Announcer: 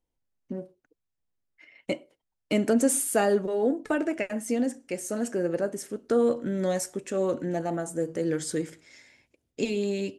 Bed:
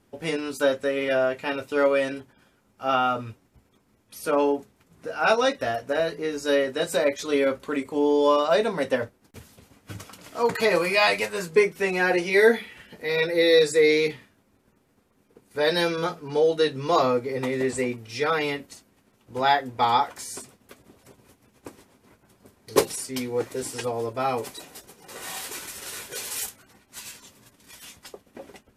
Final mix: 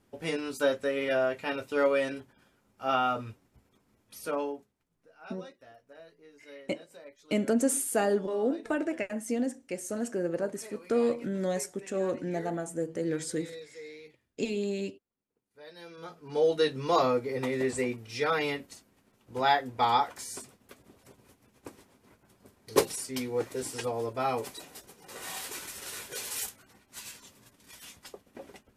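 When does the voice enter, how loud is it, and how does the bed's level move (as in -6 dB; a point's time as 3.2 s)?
4.80 s, -3.5 dB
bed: 4.15 s -4.5 dB
5.09 s -27 dB
15.75 s -27 dB
16.44 s -4 dB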